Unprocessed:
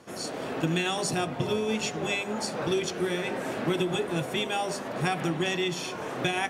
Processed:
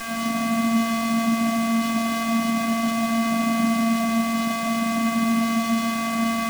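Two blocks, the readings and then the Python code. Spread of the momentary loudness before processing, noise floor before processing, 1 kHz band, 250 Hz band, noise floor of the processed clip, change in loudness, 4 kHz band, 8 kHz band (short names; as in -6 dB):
4 LU, -37 dBFS, +8.0 dB, +11.5 dB, -26 dBFS, +7.0 dB, +1.0 dB, +4.5 dB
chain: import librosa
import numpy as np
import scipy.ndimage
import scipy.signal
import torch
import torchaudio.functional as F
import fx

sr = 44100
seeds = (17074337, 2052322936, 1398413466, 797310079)

p1 = fx.over_compress(x, sr, threshold_db=-32.0, ratio=-0.5)
p2 = x + (p1 * librosa.db_to_amplitude(2.0))
p3 = fx.bandpass_edges(p2, sr, low_hz=180.0, high_hz=5300.0)
p4 = fx.room_early_taps(p3, sr, ms=(17, 34, 47), db=(-11.5, -16.5, -14.0))
p5 = p4 + 10.0 ** (-26.0 / 20.0) * np.sin(2.0 * np.pi * 1100.0 * np.arange(len(p4)) / sr)
p6 = fx.vocoder(p5, sr, bands=4, carrier='square', carrier_hz=228.0)
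p7 = fx.quant_dither(p6, sr, seeds[0], bits=6, dither='triangular')
p8 = p7 + fx.echo_single(p7, sr, ms=157, db=-3.5, dry=0)
y = fx.running_max(p8, sr, window=3)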